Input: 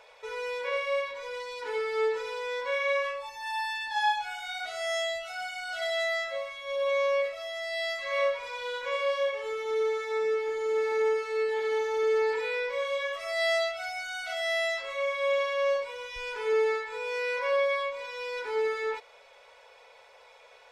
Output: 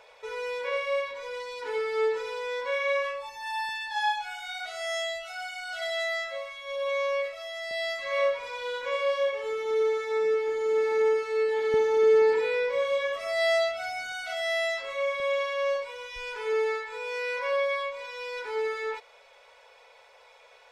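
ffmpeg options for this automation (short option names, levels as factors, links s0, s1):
-af "asetnsamples=n=441:p=0,asendcmd='3.69 equalizer g -6;7.71 equalizer g 5.5;11.74 equalizer g 12.5;14.12 equalizer g 5;15.2 equalizer g -3',equalizer=f=190:t=o:w=2.4:g=3"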